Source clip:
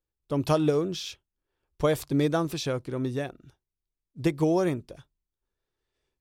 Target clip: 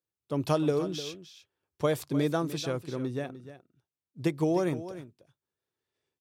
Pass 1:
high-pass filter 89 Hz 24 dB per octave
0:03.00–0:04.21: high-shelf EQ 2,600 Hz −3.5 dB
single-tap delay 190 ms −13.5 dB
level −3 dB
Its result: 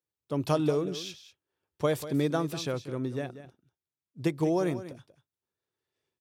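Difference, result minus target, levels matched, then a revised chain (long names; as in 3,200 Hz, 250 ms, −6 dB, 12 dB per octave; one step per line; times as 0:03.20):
echo 111 ms early
high-pass filter 89 Hz 24 dB per octave
0:03.00–0:04.21: high-shelf EQ 2,600 Hz −3.5 dB
single-tap delay 301 ms −13.5 dB
level −3 dB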